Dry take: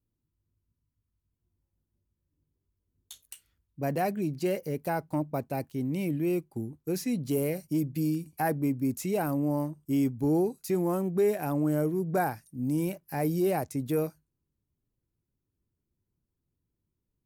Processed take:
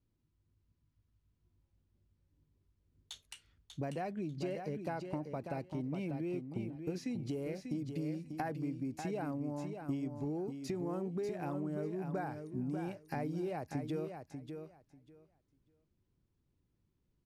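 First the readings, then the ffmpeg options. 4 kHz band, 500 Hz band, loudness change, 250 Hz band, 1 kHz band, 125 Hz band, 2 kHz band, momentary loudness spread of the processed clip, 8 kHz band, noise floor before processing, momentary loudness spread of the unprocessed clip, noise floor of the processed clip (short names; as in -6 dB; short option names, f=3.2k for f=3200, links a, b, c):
-6.0 dB, -10.5 dB, -10.0 dB, -9.5 dB, -9.5 dB, -8.5 dB, -9.5 dB, 9 LU, -14.5 dB, -84 dBFS, 7 LU, -80 dBFS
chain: -filter_complex "[0:a]lowpass=4.9k,acompressor=threshold=-39dB:ratio=10,asplit=2[a][b];[b]aecho=0:1:592|1184|1776:0.447|0.0759|0.0129[c];[a][c]amix=inputs=2:normalize=0,volume=3dB"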